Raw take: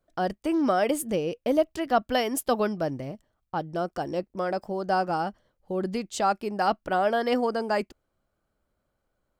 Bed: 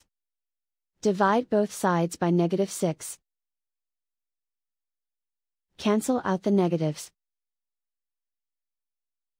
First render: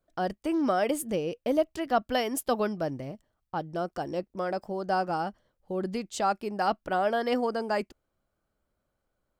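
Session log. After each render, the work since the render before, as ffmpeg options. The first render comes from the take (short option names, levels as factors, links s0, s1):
-af "volume=0.75"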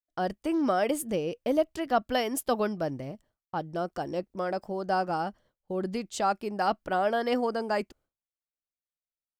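-af "agate=range=0.0224:threshold=0.00158:ratio=3:detection=peak"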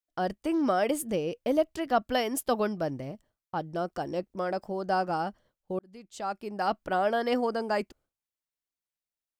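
-filter_complex "[0:a]asplit=2[s0][s1];[s0]atrim=end=5.79,asetpts=PTS-STARTPTS,afade=t=out:st=5.786:d=0.004:c=hsin[s2];[s1]atrim=start=5.79,asetpts=PTS-STARTPTS,afade=t=in:d=1.05[s3];[s2][s3]concat=n=2:v=0:a=1"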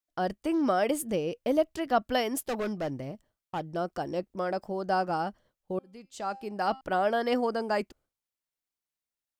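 -filter_complex "[0:a]asettb=1/sr,asplit=3[s0][s1][s2];[s0]atrim=end=2.374[s3];[s1]atrim=start=2.37:end=3.71,asetpts=PTS-STARTPTS,afade=t=in:d=0.004:c=qsin,afade=t=out:st=1.336:d=0.004:c=qsin,asoftclip=type=hard:threshold=0.0422[s4];[s2]atrim=start=3.706[s5];[s3][s4]acrossfade=d=0.004:c1=hsin:c2=qsin[s6];[s6][s5]acrossfade=d=0.004:c1=qsin:c2=hsin,asettb=1/sr,asplit=3[s7][s8][s9];[s7]atrim=end=5.724[s10];[s8]atrim=start=5.72:end=6.81,asetpts=PTS-STARTPTS,afade=t=in:d=0.004:c=qsin,afade=t=out:st=1.086:d=0.004:c=qsin,bandreject=f=264.4:t=h:w=4,bandreject=f=528.8:t=h:w=4,bandreject=f=793.2:t=h:w=4,bandreject=f=1057.6:t=h:w=4,bandreject=f=1322:t=h:w=4,bandreject=f=1586.4:t=h:w=4,bandreject=f=1850.8:t=h:w=4,bandreject=f=2115.2:t=h:w=4,bandreject=f=2379.6:t=h:w=4,bandreject=f=2644:t=h:w=4,bandreject=f=2908.4:t=h:w=4,bandreject=f=3172.8:t=h:w=4,bandreject=f=3437.2:t=h:w=4,bandreject=f=3701.6:t=h:w=4,bandreject=f=3966:t=h:w=4,bandreject=f=4230.4:t=h:w=4,bandreject=f=4494.8:t=h:w=4,bandreject=f=4759.2:t=h:w=4,bandreject=f=5023.6:t=h:w=4,bandreject=f=5288:t=h:w=4,bandreject=f=5552.4:t=h:w=4,bandreject=f=5816.8:t=h:w=4,bandreject=f=6081.2:t=h:w=4,bandreject=f=6345.6:t=h:w=4,bandreject=f=6610:t=h:w=4,bandreject=f=6874.4:t=h:w=4,bandreject=f=7138.8:t=h:w=4,bandreject=f=7403.2:t=h:w=4,bandreject=f=7667.6:t=h:w=4,bandreject=f=7932:t=h:w=4,bandreject=f=8196.4:t=h:w=4,bandreject=f=8460.8:t=h:w=4,bandreject=f=8725.2:t=h:w=4,bandreject=f=8989.6:t=h:w=4,bandreject=f=9254:t=h:w=4,bandreject=f=9518.4:t=h:w=4,bandreject=f=9782.8:t=h:w=4,bandreject=f=10047.2:t=h:w=4,bandreject=f=10311.6:t=h:w=4[s11];[s9]atrim=start=6.806[s12];[s10][s11]acrossfade=d=0.004:c1=hsin:c2=qsin[s13];[s13][s12]acrossfade=d=0.004:c1=qsin:c2=hsin"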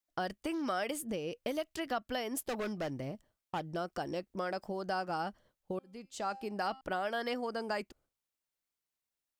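-filter_complex "[0:a]acrossover=split=1300[s0][s1];[s0]acompressor=threshold=0.0178:ratio=6[s2];[s1]alimiter=level_in=1.78:limit=0.0631:level=0:latency=1:release=441,volume=0.562[s3];[s2][s3]amix=inputs=2:normalize=0"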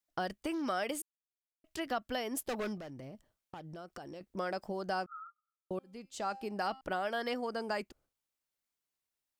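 -filter_complex "[0:a]asettb=1/sr,asplit=3[s0][s1][s2];[s0]atrim=end=2.774[s3];[s1]atrim=start=2.77:end=4.21,asetpts=PTS-STARTPTS,afade=t=in:d=0.004:c=qsin,afade=t=out:st=1.436:d=0.004:c=qsin,acompressor=threshold=0.00708:ratio=6:attack=3.2:release=140:knee=1:detection=peak[s4];[s2]atrim=start=4.206[s5];[s3][s4]acrossfade=d=0.004:c1=hsin:c2=qsin[s6];[s6][s5]acrossfade=d=0.004:c1=qsin:c2=hsin,asettb=1/sr,asplit=3[s7][s8][s9];[s7]atrim=end=5.064[s10];[s8]atrim=start=5.06:end=5.71,asetpts=PTS-STARTPTS,afade=t=in:d=0.004:c=qsin,afade=t=out:st=0.646:d=0.004:c=qsin,asuperpass=centerf=1300:order=20:qfactor=6.7[s11];[s9]atrim=start=5.706[s12];[s10][s11]acrossfade=d=0.004:c1=hsin:c2=qsin[s13];[s13][s12]acrossfade=d=0.004:c1=qsin:c2=hsin,asplit=3[s14][s15][s16];[s14]atrim=end=1.02,asetpts=PTS-STARTPTS,afade=t=out:st=1.016:d=0.004:c=hsin[s17];[s15]atrim=start=1.02:end=1.64,asetpts=PTS-STARTPTS,volume=0[s18];[s16]atrim=start=1.64,asetpts=PTS-STARTPTS,afade=t=in:d=0.004:c=hsin[s19];[s17][s18][s19]concat=n=3:v=0:a=1"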